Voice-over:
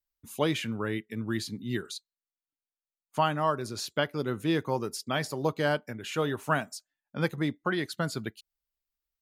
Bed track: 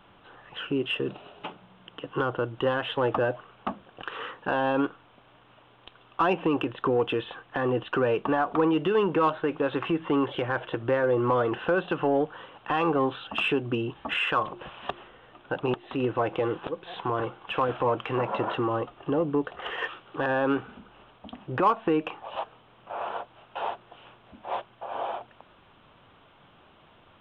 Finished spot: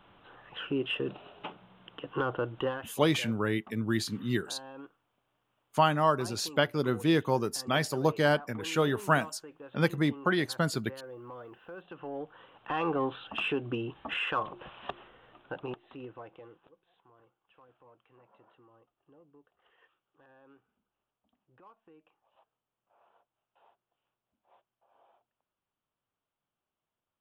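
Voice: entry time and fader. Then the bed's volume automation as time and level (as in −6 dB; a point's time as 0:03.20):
2.60 s, +2.0 dB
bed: 0:02.61 −3.5 dB
0:03.03 −21.5 dB
0:11.69 −21.5 dB
0:12.77 −5.5 dB
0:15.34 −5.5 dB
0:17.07 −34.5 dB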